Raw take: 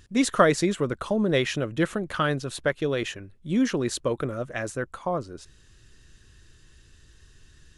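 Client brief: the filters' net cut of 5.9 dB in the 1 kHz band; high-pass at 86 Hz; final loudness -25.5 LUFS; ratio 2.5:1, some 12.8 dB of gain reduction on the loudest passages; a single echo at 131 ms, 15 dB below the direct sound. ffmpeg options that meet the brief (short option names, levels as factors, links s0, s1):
-af "highpass=86,equalizer=f=1000:t=o:g=-8.5,acompressor=threshold=0.0141:ratio=2.5,aecho=1:1:131:0.178,volume=3.98"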